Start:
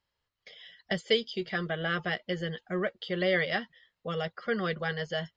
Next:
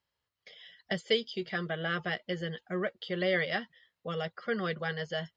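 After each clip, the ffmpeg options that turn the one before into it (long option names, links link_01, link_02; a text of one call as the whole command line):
ffmpeg -i in.wav -af "highpass=56,volume=-2dB" out.wav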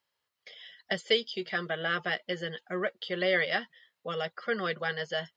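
ffmpeg -i in.wav -af "highpass=frequency=380:poles=1,volume=3.5dB" out.wav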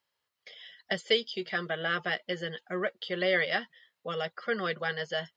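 ffmpeg -i in.wav -af anull out.wav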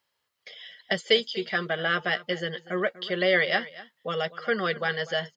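ffmpeg -i in.wav -af "aecho=1:1:243:0.126,volume=4.5dB" out.wav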